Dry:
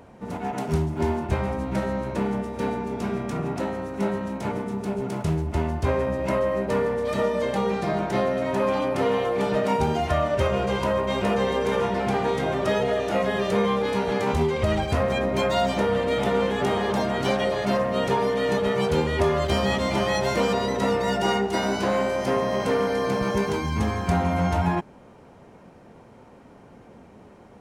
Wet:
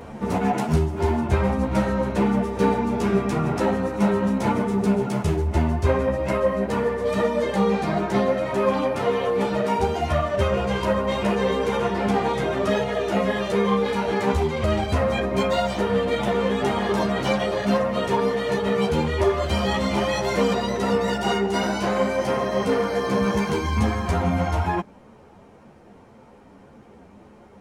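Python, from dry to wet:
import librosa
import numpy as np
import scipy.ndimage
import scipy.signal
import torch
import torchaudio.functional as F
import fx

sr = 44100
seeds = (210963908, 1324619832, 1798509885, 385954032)

y = fx.rider(x, sr, range_db=10, speed_s=0.5)
y = fx.ensemble(y, sr)
y = y * librosa.db_to_amplitude(4.5)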